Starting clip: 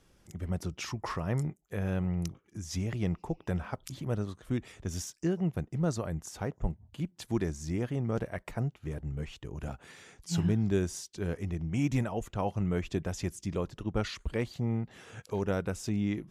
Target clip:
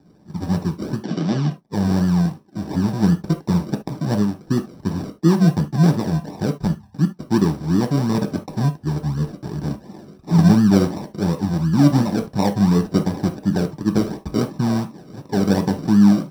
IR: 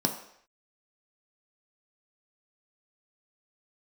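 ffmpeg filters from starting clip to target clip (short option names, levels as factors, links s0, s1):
-filter_complex "[0:a]acrusher=samples=40:mix=1:aa=0.000001:lfo=1:lforange=24:lforate=2.8,asplit=3[s0][s1][s2];[s0]afade=t=out:st=0.99:d=0.02[s3];[s1]highpass=f=150:w=0.5412,highpass=f=150:w=1.3066,equalizer=f=470:t=q:w=4:g=-5,equalizer=f=920:t=q:w=4:g=-6,equalizer=f=3000:t=q:w=4:g=7,lowpass=f=6400:w=0.5412,lowpass=f=6400:w=1.3066,afade=t=in:st=0.99:d=0.02,afade=t=out:st=1.49:d=0.02[s4];[s2]afade=t=in:st=1.49:d=0.02[s5];[s3][s4][s5]amix=inputs=3:normalize=0[s6];[1:a]atrim=start_sample=2205,atrim=end_sample=3528[s7];[s6][s7]afir=irnorm=-1:irlink=0,volume=0.891"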